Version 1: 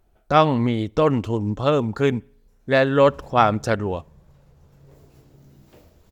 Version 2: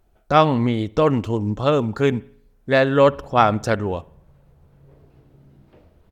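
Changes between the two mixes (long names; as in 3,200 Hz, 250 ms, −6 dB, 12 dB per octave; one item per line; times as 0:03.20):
speech: send +8.0 dB
background: add high-frequency loss of the air 290 metres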